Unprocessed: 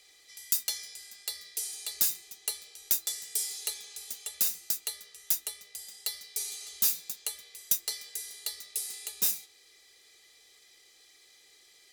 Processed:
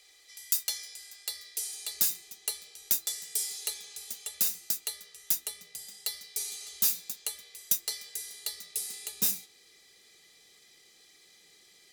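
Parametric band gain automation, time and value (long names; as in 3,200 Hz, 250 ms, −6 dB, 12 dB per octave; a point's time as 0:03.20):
parametric band 180 Hz 1.2 octaves
0:01.43 −8 dB
0:02.07 +4 dB
0:05.29 +4 dB
0:05.63 +13.5 dB
0:06.35 +4 dB
0:08.26 +4 dB
0:08.83 +12 dB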